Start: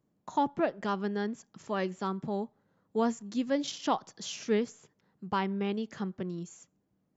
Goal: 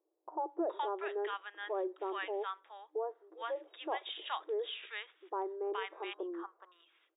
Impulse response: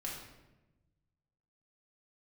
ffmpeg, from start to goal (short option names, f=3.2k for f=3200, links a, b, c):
-filter_complex "[0:a]asettb=1/sr,asplit=3[a][b][c];[a]atrim=end=5.714[d];[b]atrim=start=5.71:end=6.3,asetpts=PTS-STARTPTS,afade=t=in:d=0.004:c=qsin,afade=t=out:st=0.586:d=0.004:c=qsin,highshelf=f=1.6k:t=q:w=3:g=-13.5[e];[c]atrim=start=6.296[f];[d][e]acrossfade=d=0.004:c1=hsin:c2=qsin[g];[g][f]acrossfade=d=0.004:c1=qsin:c2=hsin,acrossover=split=1000[h][i];[i]adelay=420[j];[h][j]amix=inputs=2:normalize=0,alimiter=level_in=2.5dB:limit=-24dB:level=0:latency=1:release=22,volume=-2.5dB,afftfilt=real='re*between(b*sr/4096,310,3800)':imag='im*between(b*sr/4096,310,3800)':win_size=4096:overlap=0.75"